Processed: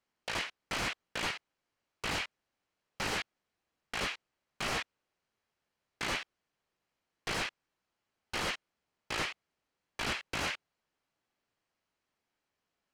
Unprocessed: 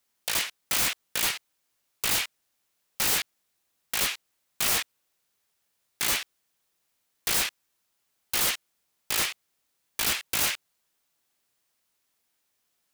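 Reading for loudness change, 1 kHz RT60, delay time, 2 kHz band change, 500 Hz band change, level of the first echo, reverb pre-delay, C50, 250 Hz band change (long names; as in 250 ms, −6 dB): −10.0 dB, no reverb audible, no echo audible, −4.5 dB, −1.0 dB, no echo audible, no reverb audible, no reverb audible, −0.5 dB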